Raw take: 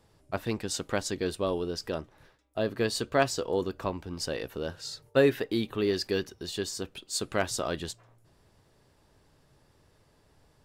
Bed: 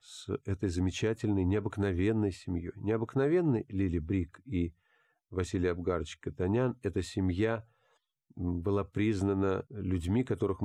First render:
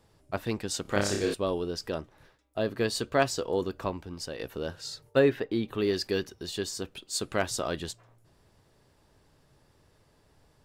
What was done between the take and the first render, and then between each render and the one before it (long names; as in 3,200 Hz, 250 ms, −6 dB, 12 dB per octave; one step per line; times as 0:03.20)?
0:00.82–0:01.34: flutter between parallel walls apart 5.1 metres, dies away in 0.61 s
0:03.87–0:04.39: fade out, to −6.5 dB
0:05.18–0:05.67: low-pass filter 3,400 Hz → 1,800 Hz 6 dB per octave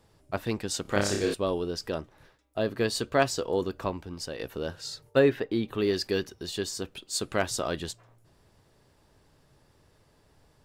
level +1 dB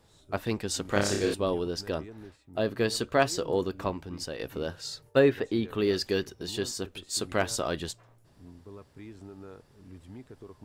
mix in bed −16.5 dB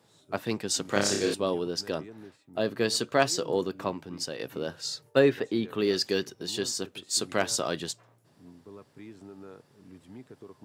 high-pass filter 120 Hz 24 dB per octave
dynamic equaliser 5,900 Hz, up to +5 dB, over −45 dBFS, Q 0.86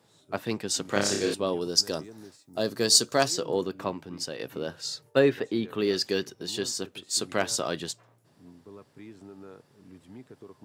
0:01.61–0:03.28: high shelf with overshoot 3,900 Hz +10 dB, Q 1.5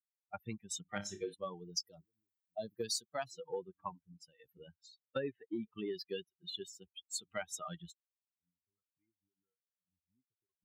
spectral dynamics exaggerated over time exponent 3
downward compressor 6 to 1, threshold −36 dBFS, peak gain reduction 17.5 dB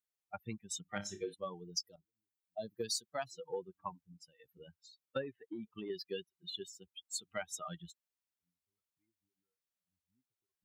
0:01.96–0:02.67: fade in, from −12.5 dB
0:05.21–0:05.90: downward compressor, threshold −39 dBFS